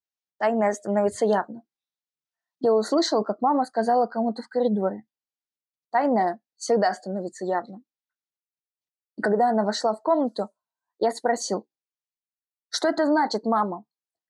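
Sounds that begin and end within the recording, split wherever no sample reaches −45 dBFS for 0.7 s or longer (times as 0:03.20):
0:02.61–0:05.01
0:05.93–0:07.79
0:09.18–0:11.62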